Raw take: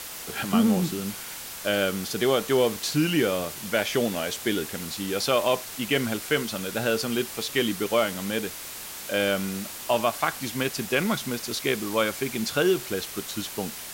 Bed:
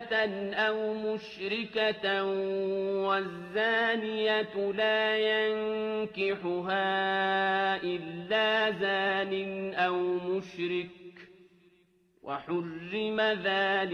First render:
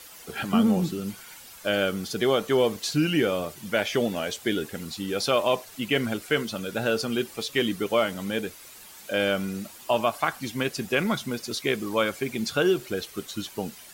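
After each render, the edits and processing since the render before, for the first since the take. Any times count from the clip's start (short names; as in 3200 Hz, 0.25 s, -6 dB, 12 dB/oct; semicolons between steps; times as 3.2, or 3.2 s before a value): denoiser 11 dB, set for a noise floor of -38 dBFS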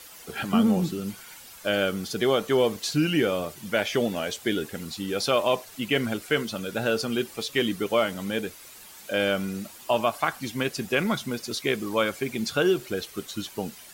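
nothing audible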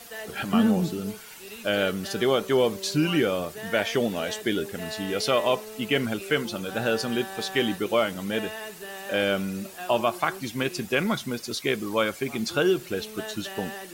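add bed -10.5 dB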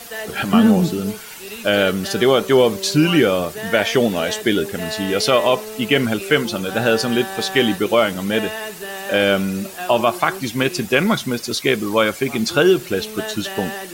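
gain +8.5 dB; limiter -3 dBFS, peak gain reduction 2 dB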